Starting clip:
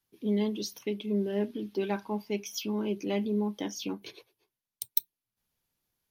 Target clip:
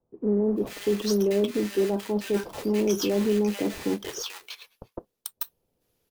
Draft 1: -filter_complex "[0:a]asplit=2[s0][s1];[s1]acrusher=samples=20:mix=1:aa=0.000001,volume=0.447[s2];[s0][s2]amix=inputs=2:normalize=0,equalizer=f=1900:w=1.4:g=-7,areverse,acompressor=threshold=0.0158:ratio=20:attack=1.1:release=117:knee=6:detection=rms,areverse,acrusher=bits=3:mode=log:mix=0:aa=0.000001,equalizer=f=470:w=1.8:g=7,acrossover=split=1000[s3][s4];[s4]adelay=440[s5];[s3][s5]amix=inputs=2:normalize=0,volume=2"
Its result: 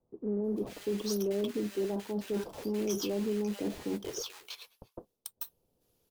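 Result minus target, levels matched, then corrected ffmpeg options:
compression: peak gain reduction +9 dB; 2 kHz band -2.5 dB
-filter_complex "[0:a]asplit=2[s0][s1];[s1]acrusher=samples=20:mix=1:aa=0.000001,volume=0.447[s2];[s0][s2]amix=inputs=2:normalize=0,areverse,acompressor=threshold=0.0473:ratio=20:attack=1.1:release=117:knee=6:detection=rms,areverse,acrusher=bits=3:mode=log:mix=0:aa=0.000001,equalizer=f=470:w=1.8:g=7,acrossover=split=1000[s3][s4];[s4]adelay=440[s5];[s3][s5]amix=inputs=2:normalize=0,volume=2"

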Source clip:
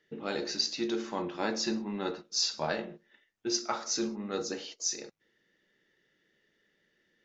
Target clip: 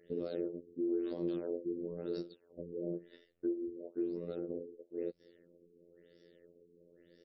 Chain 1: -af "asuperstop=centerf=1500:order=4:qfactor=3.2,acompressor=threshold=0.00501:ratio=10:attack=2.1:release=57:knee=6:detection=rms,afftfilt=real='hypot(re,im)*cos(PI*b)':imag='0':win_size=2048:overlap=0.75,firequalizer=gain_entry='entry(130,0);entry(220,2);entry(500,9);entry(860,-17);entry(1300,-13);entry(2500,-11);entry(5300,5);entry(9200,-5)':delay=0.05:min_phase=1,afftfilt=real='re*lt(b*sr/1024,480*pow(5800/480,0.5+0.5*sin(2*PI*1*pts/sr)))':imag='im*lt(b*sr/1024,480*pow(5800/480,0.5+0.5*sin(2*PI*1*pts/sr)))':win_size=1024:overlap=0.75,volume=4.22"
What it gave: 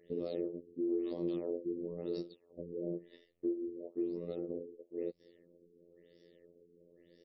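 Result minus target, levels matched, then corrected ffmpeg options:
2 kHz band -3.5 dB
-af "acompressor=threshold=0.00501:ratio=10:attack=2.1:release=57:knee=6:detection=rms,afftfilt=real='hypot(re,im)*cos(PI*b)':imag='0':win_size=2048:overlap=0.75,firequalizer=gain_entry='entry(130,0);entry(220,2);entry(500,9);entry(860,-17);entry(1300,-13);entry(2500,-11);entry(5300,5);entry(9200,-5)':delay=0.05:min_phase=1,afftfilt=real='re*lt(b*sr/1024,480*pow(5800/480,0.5+0.5*sin(2*PI*1*pts/sr)))':imag='im*lt(b*sr/1024,480*pow(5800/480,0.5+0.5*sin(2*PI*1*pts/sr)))':win_size=1024:overlap=0.75,volume=4.22"

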